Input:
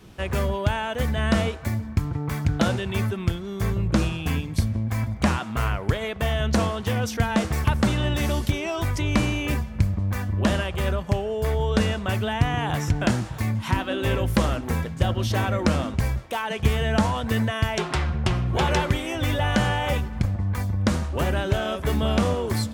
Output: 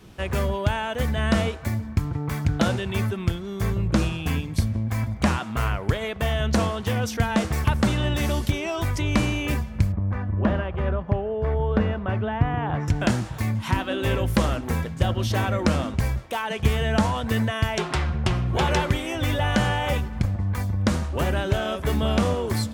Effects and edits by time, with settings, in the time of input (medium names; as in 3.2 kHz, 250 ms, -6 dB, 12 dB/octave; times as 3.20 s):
9.92–12.88 s: low-pass 1.6 kHz